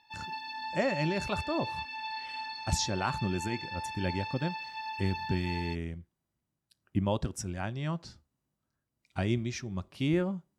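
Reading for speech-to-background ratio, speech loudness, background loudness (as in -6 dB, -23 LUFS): 5.0 dB, -33.5 LUFS, -38.5 LUFS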